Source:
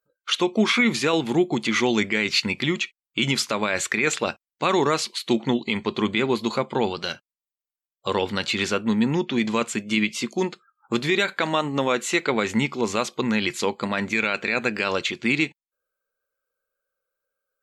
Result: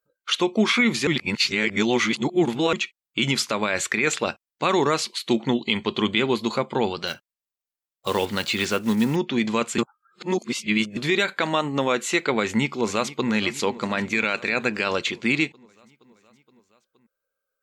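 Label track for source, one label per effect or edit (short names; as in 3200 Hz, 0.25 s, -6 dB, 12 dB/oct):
1.070000	2.730000	reverse
5.620000	6.360000	bell 3100 Hz +7.5 dB 0.34 oct
7.070000	9.180000	block floating point 5-bit
9.780000	10.970000	reverse
12.390000	13.300000	echo throw 0.47 s, feedback 70%, level -16.5 dB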